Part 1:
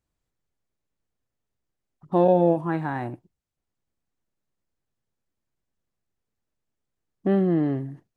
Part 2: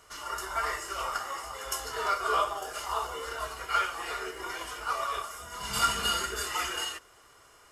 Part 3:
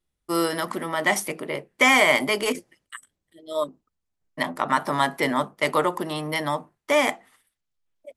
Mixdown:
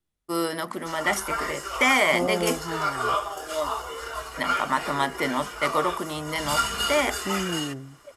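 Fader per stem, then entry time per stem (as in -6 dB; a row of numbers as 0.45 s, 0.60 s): -8.5 dB, +2.0 dB, -3.0 dB; 0.00 s, 0.75 s, 0.00 s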